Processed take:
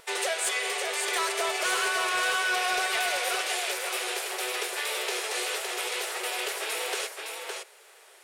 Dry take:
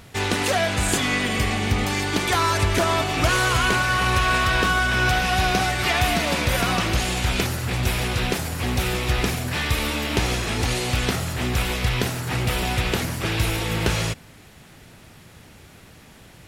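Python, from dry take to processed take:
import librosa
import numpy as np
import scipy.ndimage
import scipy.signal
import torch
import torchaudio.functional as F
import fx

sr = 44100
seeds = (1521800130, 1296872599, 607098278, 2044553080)

p1 = fx.stretch_vocoder(x, sr, factor=0.5)
p2 = scipy.signal.sosfilt(scipy.signal.butter(16, 380.0, 'highpass', fs=sr, output='sos'), p1)
p3 = p2 + fx.echo_single(p2, sr, ms=563, db=-5.5, dry=0)
p4 = fx.dynamic_eq(p3, sr, hz=940.0, q=0.97, threshold_db=-32.0, ratio=4.0, max_db=-5)
p5 = fx.wow_flutter(p4, sr, seeds[0], rate_hz=2.1, depth_cents=19.0)
p6 = fx.peak_eq(p5, sr, hz=8900.0, db=6.5, octaves=0.39)
p7 = np.clip(p6, -10.0 ** (-17.0 / 20.0), 10.0 ** (-17.0 / 20.0))
y = F.gain(torch.from_numpy(p7), -3.0).numpy()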